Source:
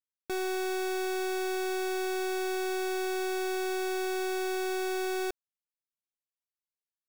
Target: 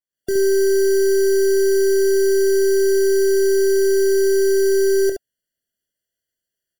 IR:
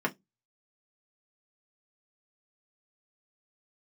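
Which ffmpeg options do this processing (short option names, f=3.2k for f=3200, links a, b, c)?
-filter_complex "[0:a]acrossover=split=770|3400[a][b][c];[b]alimiter=level_in=20.5dB:limit=-24dB:level=0:latency=1,volume=-20.5dB[d];[a][d][c]amix=inputs=3:normalize=0,dynaudnorm=f=100:g=3:m=14dB,aecho=1:1:26|72:0.299|0.501,asetrate=45938,aresample=44100,afftfilt=real='re*eq(mod(floor(b*sr/1024/690),2),0)':imag='im*eq(mod(floor(b*sr/1024/690),2),0)':win_size=1024:overlap=0.75"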